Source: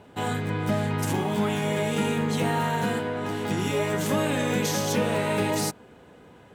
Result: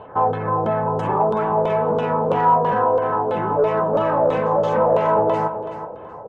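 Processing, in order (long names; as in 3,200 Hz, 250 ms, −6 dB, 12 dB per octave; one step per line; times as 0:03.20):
gate on every frequency bin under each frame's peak −30 dB strong
auto-filter low-pass saw down 2.9 Hz 440–3,600 Hz
in parallel at +1 dB: downward compressor, threshold −33 dBFS, peak gain reduction 15 dB
on the sum: soft clipping −15 dBFS, distortion −18 dB
graphic EQ with 10 bands 250 Hz −7 dB, 500 Hz +7 dB, 1,000 Hz +10 dB, 2,000 Hz −10 dB, 4,000 Hz −9 dB, 16,000 Hz −10 dB
on a send: repeating echo 392 ms, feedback 26%, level −11 dB
on the sum: wrong playback speed 24 fps film run at 25 fps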